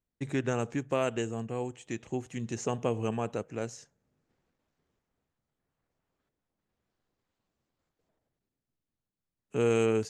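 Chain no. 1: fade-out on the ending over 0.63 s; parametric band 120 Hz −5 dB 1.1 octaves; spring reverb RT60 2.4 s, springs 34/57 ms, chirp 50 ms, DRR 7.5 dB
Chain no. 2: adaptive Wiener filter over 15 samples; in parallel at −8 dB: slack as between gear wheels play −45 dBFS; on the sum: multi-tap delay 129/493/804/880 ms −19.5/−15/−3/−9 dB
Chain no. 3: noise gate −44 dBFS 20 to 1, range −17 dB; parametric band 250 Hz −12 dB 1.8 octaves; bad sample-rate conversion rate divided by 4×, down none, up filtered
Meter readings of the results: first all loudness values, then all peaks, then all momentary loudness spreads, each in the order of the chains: −33.5, −29.0, −38.0 LKFS; −15.0, −12.0, −20.0 dBFS; 10, 9, 10 LU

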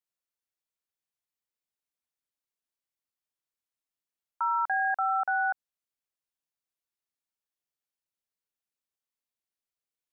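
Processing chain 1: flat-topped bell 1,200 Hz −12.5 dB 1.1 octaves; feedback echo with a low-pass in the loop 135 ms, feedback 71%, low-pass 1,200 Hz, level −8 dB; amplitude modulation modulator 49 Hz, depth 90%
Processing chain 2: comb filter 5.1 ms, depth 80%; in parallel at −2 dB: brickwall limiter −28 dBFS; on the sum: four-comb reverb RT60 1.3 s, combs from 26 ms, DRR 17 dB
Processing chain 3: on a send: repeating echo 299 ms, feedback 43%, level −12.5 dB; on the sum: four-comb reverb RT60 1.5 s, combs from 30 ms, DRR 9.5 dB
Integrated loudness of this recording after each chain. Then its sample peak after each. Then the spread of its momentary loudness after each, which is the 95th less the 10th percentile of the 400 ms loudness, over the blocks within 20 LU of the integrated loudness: −38.0, −23.0, −27.0 LKFS; −25.0, −14.0, −16.5 dBFS; 16, 6, 18 LU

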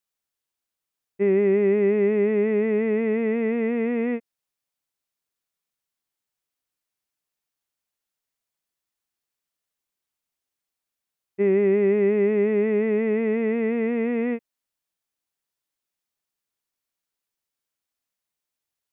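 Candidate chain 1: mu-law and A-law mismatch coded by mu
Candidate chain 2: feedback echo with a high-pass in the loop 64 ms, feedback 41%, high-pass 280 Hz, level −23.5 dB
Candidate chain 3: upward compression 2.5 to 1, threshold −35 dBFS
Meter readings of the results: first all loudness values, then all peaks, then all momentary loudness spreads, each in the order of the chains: −21.5, −22.0, −22.5 LKFS; −12.5, −12.5, −12.5 dBFS; 6, 7, 6 LU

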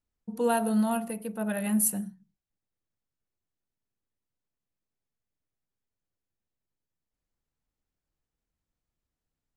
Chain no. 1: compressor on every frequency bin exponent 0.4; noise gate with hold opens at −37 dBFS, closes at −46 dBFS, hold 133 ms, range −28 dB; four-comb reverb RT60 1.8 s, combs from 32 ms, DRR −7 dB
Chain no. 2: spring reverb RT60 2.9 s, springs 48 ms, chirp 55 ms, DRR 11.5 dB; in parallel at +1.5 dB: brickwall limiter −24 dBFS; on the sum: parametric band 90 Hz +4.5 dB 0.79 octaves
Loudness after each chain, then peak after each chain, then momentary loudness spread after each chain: −17.0, −23.5 LKFS; −2.5, −10.5 dBFS; 16, 14 LU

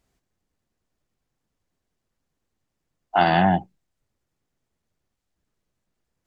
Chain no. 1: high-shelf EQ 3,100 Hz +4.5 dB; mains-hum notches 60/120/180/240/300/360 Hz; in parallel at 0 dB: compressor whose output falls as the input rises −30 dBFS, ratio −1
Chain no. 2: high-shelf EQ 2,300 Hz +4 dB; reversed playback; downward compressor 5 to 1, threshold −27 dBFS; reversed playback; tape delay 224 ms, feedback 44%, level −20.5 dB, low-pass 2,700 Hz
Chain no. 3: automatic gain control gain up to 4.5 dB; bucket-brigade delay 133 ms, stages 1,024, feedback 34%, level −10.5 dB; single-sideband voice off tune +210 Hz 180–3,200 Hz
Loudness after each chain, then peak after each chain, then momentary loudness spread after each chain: −19.5, −31.0, −18.0 LKFS; −4.0, −17.0, −2.5 dBFS; 9, 12, 9 LU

